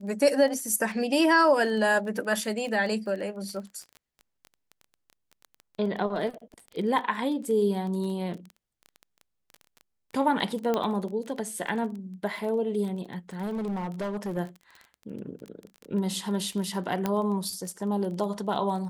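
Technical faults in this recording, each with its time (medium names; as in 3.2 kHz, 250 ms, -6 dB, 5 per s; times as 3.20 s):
crackle 18 per s -34 dBFS
10.74 s: pop -14 dBFS
13.41–14.38 s: clipped -27.5 dBFS
17.06 s: pop -13 dBFS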